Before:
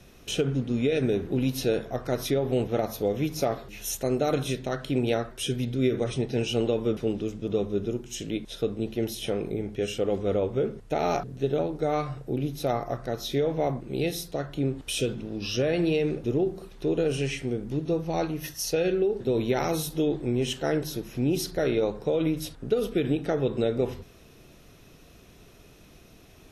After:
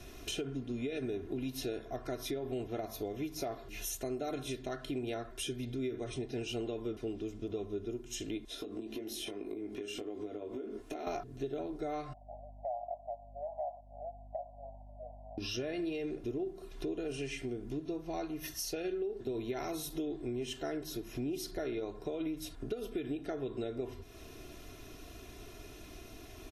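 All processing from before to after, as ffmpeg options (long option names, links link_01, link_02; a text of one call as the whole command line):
ffmpeg -i in.wav -filter_complex "[0:a]asettb=1/sr,asplit=3[link_01][link_02][link_03];[link_01]atrim=end=8.484[link_04];[link_02]atrim=start=8.48:end=11.07,asetpts=PTS-STARTPTS,afade=type=in:duration=0.004:curve=qsin,afade=type=out:start_time=2.586:duration=0.004:curve=qsin,lowshelf=frequency=200:width_type=q:width=3:gain=-8,acompressor=threshold=-35dB:ratio=6:attack=3.2:release=140:knee=1:detection=peak,asplit=2[link_05][link_06];[link_06]adelay=19,volume=-5dB[link_07];[link_05][link_07]amix=inputs=2:normalize=0,atrim=end_sample=114219[link_08];[link_03]atrim=start=11.066[link_09];[link_04][link_08]acrossfade=duration=0.004:curve1=hsin:curve2=qsin[link_10];[link_10][link_09]acrossfade=duration=0.004:curve1=qsin:curve2=hsin,asettb=1/sr,asplit=3[link_11][link_12][link_13];[link_11]atrim=end=12.134[link_14];[link_12]atrim=start=12.13:end=15.38,asetpts=PTS-STARTPTS,afade=type=in:duration=0.004:curve=qsin,afade=type=out:start_time=3.246:duration=0.004:curve=qsin,asuperpass=centerf=720:order=12:qfactor=2.2,aeval=exprs='val(0)+0.002*(sin(2*PI*50*n/s)+sin(2*PI*2*50*n/s)/2+sin(2*PI*3*50*n/s)/3+sin(2*PI*4*50*n/s)/4+sin(2*PI*5*50*n/s)/5)':channel_layout=same[link_15];[link_13]atrim=start=15.376[link_16];[link_14][link_15]acrossfade=duration=0.004:curve1=hsin:curve2=qsin[link_17];[link_17][link_16]acrossfade=duration=0.004:curve1=qsin:curve2=hsin,aecho=1:1:2.9:0.62,acompressor=threshold=-41dB:ratio=3,volume=1dB" out.wav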